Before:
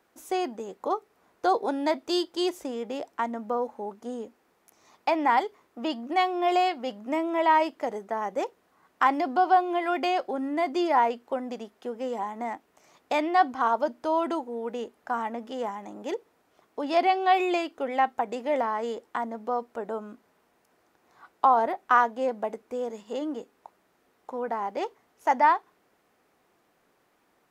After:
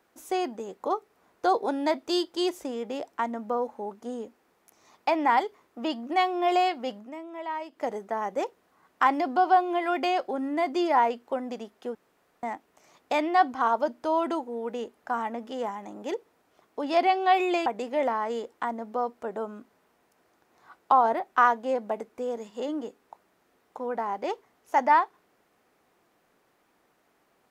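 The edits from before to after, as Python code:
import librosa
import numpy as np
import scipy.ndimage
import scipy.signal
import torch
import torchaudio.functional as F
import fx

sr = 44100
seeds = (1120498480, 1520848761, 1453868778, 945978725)

y = fx.edit(x, sr, fx.fade_down_up(start_s=6.97, length_s=0.87, db=-12.5, fade_s=0.14),
    fx.room_tone_fill(start_s=11.95, length_s=0.48),
    fx.cut(start_s=17.66, length_s=0.53), tone=tone)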